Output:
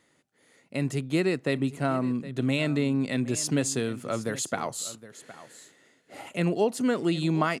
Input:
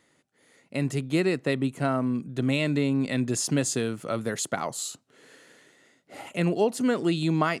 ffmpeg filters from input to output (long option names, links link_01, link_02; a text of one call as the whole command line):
ffmpeg -i in.wav -af "aecho=1:1:765:0.15,volume=-1dB" out.wav